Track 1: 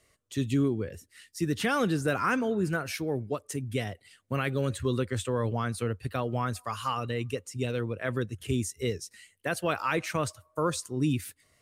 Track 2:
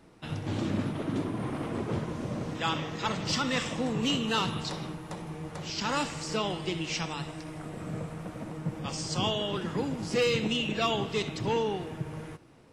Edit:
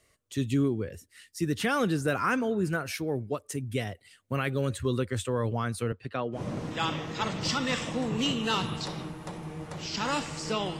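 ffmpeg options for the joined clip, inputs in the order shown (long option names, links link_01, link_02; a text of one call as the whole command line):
ffmpeg -i cue0.wav -i cue1.wav -filter_complex "[0:a]asettb=1/sr,asplit=3[link_01][link_02][link_03];[link_01]atrim=end=5.924[link_04];[link_02]atrim=start=5.92:end=6.42,asetpts=PTS-STARTPTS,afade=type=in:duration=0.004:curve=qsin,afade=type=out:start_time=0.496:duration=0.004:curve=qsin,highpass=160,lowpass=4200[link_05];[link_03]atrim=start=6.416[link_06];[link_04][link_05]acrossfade=duration=0.004:curve1=hsin:curve2=qsin[link_07];[link_07][link_06]acrossfade=duration=0.004:curve1=qsin:curve2=hsin,apad=whole_dur=10.79,atrim=end=10.79,atrim=end=6.42,asetpts=PTS-STARTPTS[link_08];[1:a]atrim=start=2.16:end=6.63,asetpts=PTS-STARTPTS[link_09];[link_08][link_09]acrossfade=duration=0.1:curve1=tri:curve2=tri" out.wav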